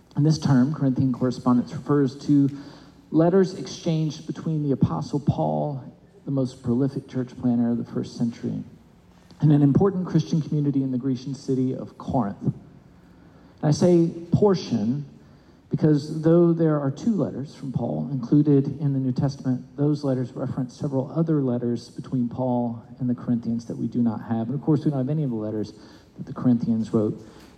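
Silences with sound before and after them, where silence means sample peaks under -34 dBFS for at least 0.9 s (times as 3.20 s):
12.57–13.63 s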